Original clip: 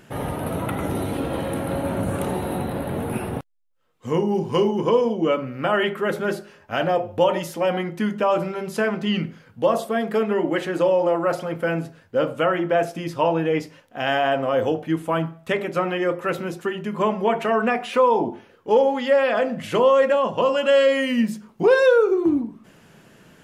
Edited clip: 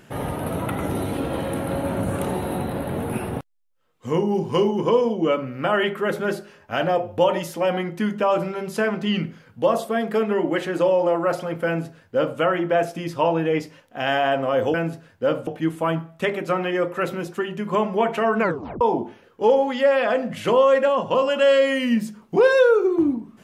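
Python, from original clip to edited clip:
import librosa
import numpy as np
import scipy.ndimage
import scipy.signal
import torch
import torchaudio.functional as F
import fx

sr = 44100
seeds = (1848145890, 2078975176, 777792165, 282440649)

y = fx.edit(x, sr, fx.duplicate(start_s=11.66, length_s=0.73, to_s=14.74),
    fx.tape_stop(start_s=17.65, length_s=0.43), tone=tone)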